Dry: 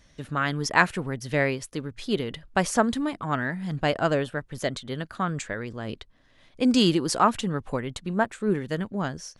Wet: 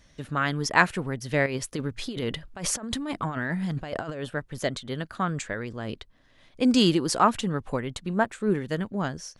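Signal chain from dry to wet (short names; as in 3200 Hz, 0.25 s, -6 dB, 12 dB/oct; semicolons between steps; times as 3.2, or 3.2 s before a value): 1.46–4.24 negative-ratio compressor -31 dBFS, ratio -1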